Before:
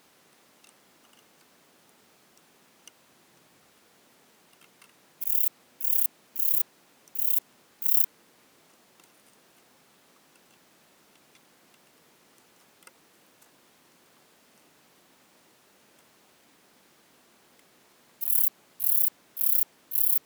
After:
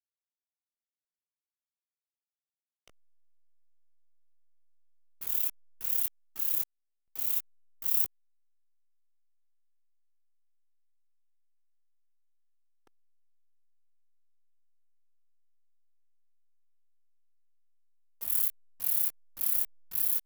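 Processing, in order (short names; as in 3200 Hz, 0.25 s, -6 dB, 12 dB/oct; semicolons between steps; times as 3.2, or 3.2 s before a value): chorus 0.39 Hz, delay 18.5 ms, depth 2.2 ms; backlash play -35 dBFS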